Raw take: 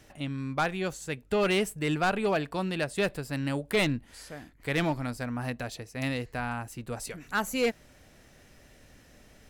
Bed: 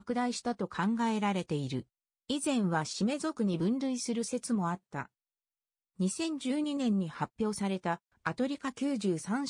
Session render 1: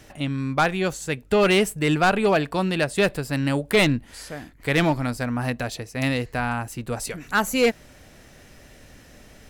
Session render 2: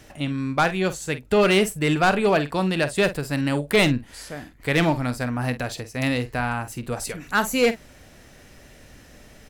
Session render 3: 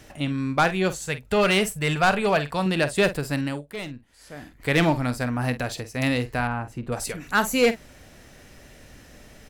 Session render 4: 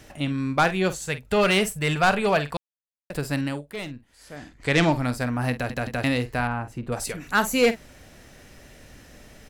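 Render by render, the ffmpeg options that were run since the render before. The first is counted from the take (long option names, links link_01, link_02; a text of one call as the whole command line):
ffmpeg -i in.wav -af "volume=7.5dB" out.wav
ffmpeg -i in.wav -filter_complex "[0:a]asplit=2[link_01][link_02];[link_02]adelay=48,volume=-13dB[link_03];[link_01][link_03]amix=inputs=2:normalize=0" out.wav
ffmpeg -i in.wav -filter_complex "[0:a]asettb=1/sr,asplit=3[link_01][link_02][link_03];[link_01]atrim=end=1.054[link_04];[link_02]atrim=start=1.05:end=2.66,asetpts=PTS-STARTPTS,afade=type=in:duration=0.004:curve=qsin,afade=type=out:start_time=1.606:duration=0.004:curve=qsin,equalizer=frequency=310:width_type=o:width=0.71:gain=-10[link_05];[link_03]atrim=start=2.656[link_06];[link_04][link_05]acrossfade=duration=0.004:curve1=hsin:curve2=qsin[link_07];[link_07][link_06]acrossfade=duration=0.004:curve1=qsin:curve2=hsin,asettb=1/sr,asplit=3[link_08][link_09][link_10];[link_08]atrim=end=6.474[link_11];[link_09]atrim=start=6.47:end=6.92,asetpts=PTS-STARTPTS,afade=type=in:duration=0.004:curve=qsin,afade=type=out:start_time=0.446:duration=0.004:curve=qsin,lowpass=frequency=1300:poles=1[link_12];[link_10]atrim=start=6.916[link_13];[link_11][link_12]acrossfade=duration=0.004:curve1=hsin:curve2=qsin[link_14];[link_14][link_13]acrossfade=duration=0.004:curve1=qsin:curve2=hsin,asplit=3[link_15][link_16][link_17];[link_15]atrim=end=3.66,asetpts=PTS-STARTPTS,afade=type=out:start_time=3.31:duration=0.35:silence=0.158489[link_18];[link_16]atrim=start=3.66:end=4.18,asetpts=PTS-STARTPTS,volume=-16dB[link_19];[link_17]atrim=start=4.18,asetpts=PTS-STARTPTS,afade=type=in:duration=0.35:silence=0.158489[link_20];[link_18][link_19][link_20]concat=n=3:v=0:a=1" out.wav
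ffmpeg -i in.wav -filter_complex "[0:a]asettb=1/sr,asplit=3[link_01][link_02][link_03];[link_01]atrim=end=4.364[link_04];[link_02]atrim=start=4.36:end=4.92,asetpts=PTS-STARTPTS,afade=type=in:duration=0.004:curve=qsin,afade=type=out:start_time=0.556:duration=0.004:curve=qsin,lowpass=frequency=7100:width_type=q:width=1.5[link_05];[link_03]atrim=start=4.916[link_06];[link_04][link_05]acrossfade=duration=0.004:curve1=hsin:curve2=qsin[link_07];[link_07][link_06]acrossfade=duration=0.004:curve1=qsin:curve2=hsin,asplit=6[link_08][link_09][link_10][link_11][link_12][link_13];[link_08]atrim=end=2.57,asetpts=PTS-STARTPTS,afade=type=out:start_time=2.566:duration=0.004:curve=hsin[link_14];[link_09]atrim=start=2.57:end=3.1,asetpts=PTS-STARTPTS,volume=0[link_15];[link_10]atrim=start=3.1:end=5.702,asetpts=PTS-STARTPTS,afade=type=in:duration=0.004:curve=hsin[link_16];[link_11]atrim=start=5.528:end=5.702[link_17];[link_12]atrim=start=5.528:end=5.702[link_18];[link_13]atrim=start=6.038[link_19];[link_14][link_15][link_16]concat=n=3:v=0:a=1[link_20];[link_20][link_17]acrossfade=duration=0.004:curve1=hsin:curve2=hsin[link_21];[link_21][link_18]acrossfade=duration=0.004:curve1=hsin:curve2=hsin[link_22];[link_22][link_19]acrossfade=duration=0.004:curve1=hsin:curve2=hsin" out.wav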